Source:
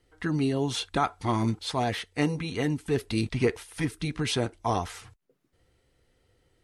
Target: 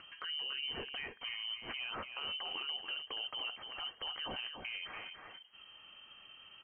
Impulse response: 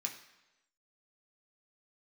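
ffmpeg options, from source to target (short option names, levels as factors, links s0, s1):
-filter_complex "[0:a]lowpass=f=2700:t=q:w=0.5098,lowpass=f=2700:t=q:w=0.6013,lowpass=f=2700:t=q:w=0.9,lowpass=f=2700:t=q:w=2.563,afreqshift=-3200,acompressor=threshold=0.02:ratio=6,tiltshelf=f=1400:g=3.5,alimiter=level_in=3.55:limit=0.0631:level=0:latency=1:release=22,volume=0.282,aecho=1:1:287:0.447,asplit=2[s0][s1];[1:a]atrim=start_sample=2205[s2];[s1][s2]afir=irnorm=-1:irlink=0,volume=0.0944[s3];[s0][s3]amix=inputs=2:normalize=0,acompressor=mode=upward:threshold=0.00447:ratio=2.5,volume=1.19"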